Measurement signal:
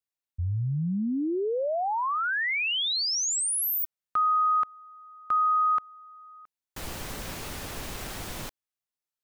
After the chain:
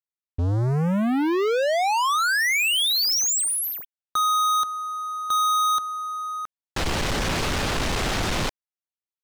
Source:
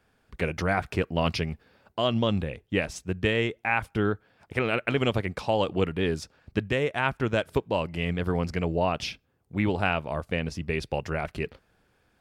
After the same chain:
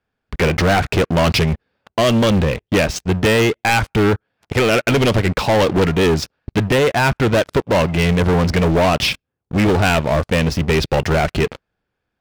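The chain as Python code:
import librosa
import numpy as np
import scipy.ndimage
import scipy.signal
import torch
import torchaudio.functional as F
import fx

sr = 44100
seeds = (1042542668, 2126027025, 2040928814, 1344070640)

y = scipy.signal.sosfilt(scipy.signal.butter(2, 5500.0, 'lowpass', fs=sr, output='sos'), x)
y = fx.leveller(y, sr, passes=5)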